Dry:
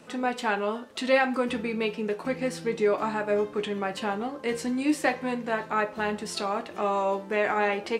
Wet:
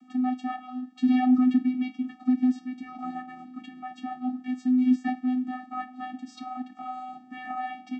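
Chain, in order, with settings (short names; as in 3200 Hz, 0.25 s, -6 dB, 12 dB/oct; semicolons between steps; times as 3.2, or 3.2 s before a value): 1–2.59 comb 4.1 ms, depth 68%; vocoder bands 16, square 253 Hz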